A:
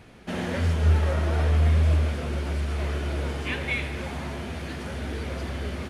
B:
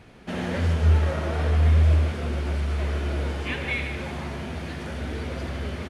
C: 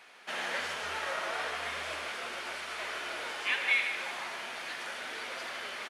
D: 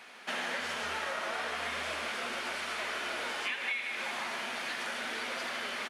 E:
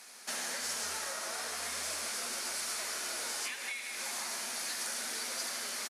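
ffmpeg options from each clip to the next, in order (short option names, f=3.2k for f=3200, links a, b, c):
-filter_complex "[0:a]highshelf=f=8.2k:g=-5.5,asplit=2[a][b];[b]aecho=0:1:72.89|151.6:0.251|0.316[c];[a][c]amix=inputs=2:normalize=0"
-af "highpass=1k,volume=2dB"
-af "equalizer=f=230:t=o:w=0.31:g=9.5,acompressor=threshold=-36dB:ratio=6,volume=4dB"
-af "aexciter=amount=8:drive=4.4:freq=4.5k,aresample=32000,aresample=44100,volume=-6dB"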